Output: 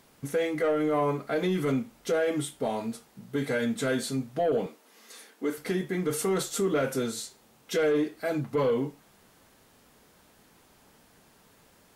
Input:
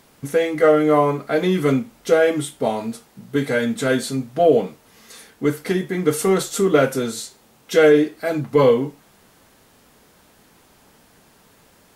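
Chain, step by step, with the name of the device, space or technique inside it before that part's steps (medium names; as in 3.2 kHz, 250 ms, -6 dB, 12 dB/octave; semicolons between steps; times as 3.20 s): soft clipper into limiter (saturation -8 dBFS, distortion -18 dB; peak limiter -13.5 dBFS, peak gain reduction 5 dB); 4.66–5.58 s: high-pass 240 Hz 24 dB/octave; trim -6 dB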